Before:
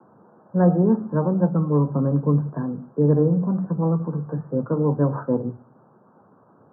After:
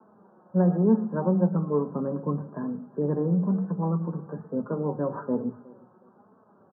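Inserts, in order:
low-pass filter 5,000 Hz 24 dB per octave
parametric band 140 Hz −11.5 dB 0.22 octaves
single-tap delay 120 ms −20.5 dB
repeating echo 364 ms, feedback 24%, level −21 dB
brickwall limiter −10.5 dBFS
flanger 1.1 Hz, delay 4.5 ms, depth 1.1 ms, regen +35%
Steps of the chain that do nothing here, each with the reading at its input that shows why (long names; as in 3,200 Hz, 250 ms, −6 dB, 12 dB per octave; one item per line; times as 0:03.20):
low-pass filter 5,000 Hz: nothing at its input above 1,000 Hz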